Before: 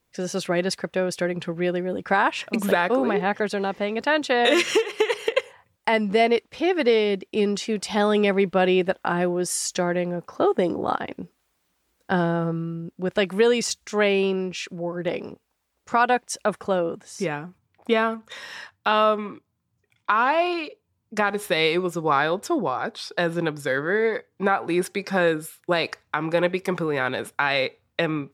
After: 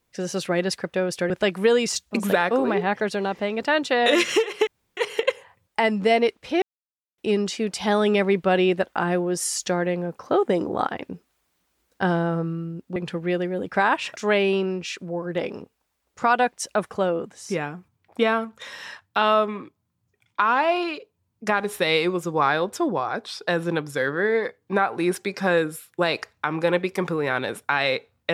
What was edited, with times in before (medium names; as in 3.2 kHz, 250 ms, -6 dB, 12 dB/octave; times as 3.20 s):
1.30–2.50 s: swap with 13.05–13.86 s
5.06 s: insert room tone 0.30 s
6.71–7.27 s: mute